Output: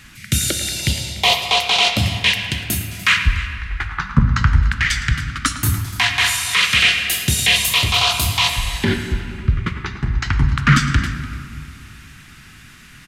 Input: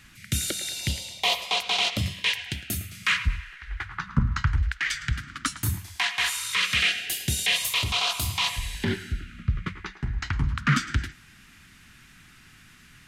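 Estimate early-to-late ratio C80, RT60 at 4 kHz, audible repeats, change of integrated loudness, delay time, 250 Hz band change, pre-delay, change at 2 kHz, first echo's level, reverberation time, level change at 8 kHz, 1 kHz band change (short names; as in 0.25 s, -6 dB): 9.0 dB, 1.4 s, 1, +9.0 dB, 0.293 s, +9.5 dB, 10 ms, +9.0 dB, -17.0 dB, 2.7 s, +9.0 dB, +9.5 dB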